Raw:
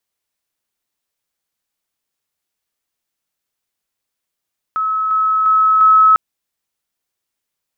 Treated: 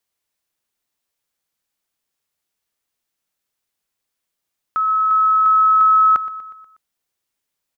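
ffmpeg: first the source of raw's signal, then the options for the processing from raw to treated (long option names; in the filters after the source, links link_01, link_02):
-f lavfi -i "aevalsrc='pow(10,(-15+3*floor(t/0.35))/20)*sin(2*PI*1290*t)':duration=1.4:sample_rate=44100"
-af "acompressor=threshold=-12dB:ratio=6,aecho=1:1:121|242|363|484|605:0.158|0.0856|0.0462|0.025|0.0135"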